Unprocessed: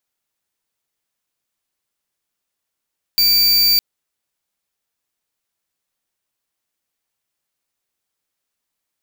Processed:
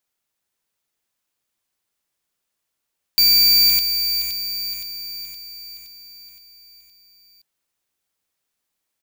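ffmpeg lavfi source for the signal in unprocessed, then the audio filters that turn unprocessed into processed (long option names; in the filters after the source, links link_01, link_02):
-f lavfi -i "aevalsrc='0.211*(2*lt(mod(4640*t,1),0.5)-1)':duration=0.61:sample_rate=44100"
-af "aecho=1:1:518|1036|1554|2072|2590|3108|3626:0.422|0.228|0.123|0.0664|0.0359|0.0194|0.0105"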